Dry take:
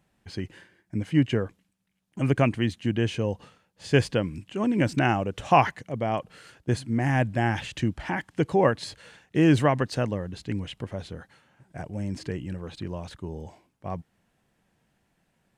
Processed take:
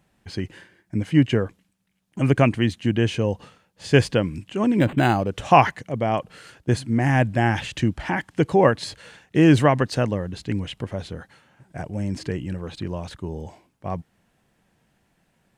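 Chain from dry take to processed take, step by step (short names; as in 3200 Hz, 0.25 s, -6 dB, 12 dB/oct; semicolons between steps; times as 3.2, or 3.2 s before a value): 4.79–5.3 decimation joined by straight lines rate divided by 8×; gain +4.5 dB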